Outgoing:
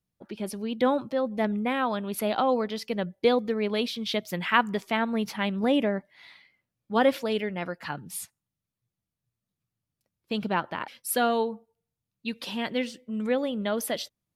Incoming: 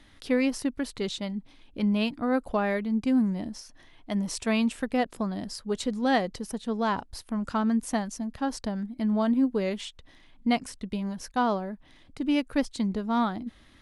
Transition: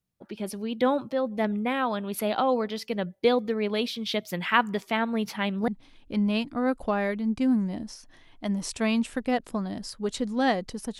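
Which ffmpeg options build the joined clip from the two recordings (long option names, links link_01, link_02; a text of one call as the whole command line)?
ffmpeg -i cue0.wav -i cue1.wav -filter_complex "[0:a]apad=whole_dur=10.99,atrim=end=10.99,atrim=end=5.682[link_01];[1:a]atrim=start=1.338:end=6.65[link_02];[link_01][link_02]acrossfade=duration=0.004:curve1=hsin:curve2=hsin" out.wav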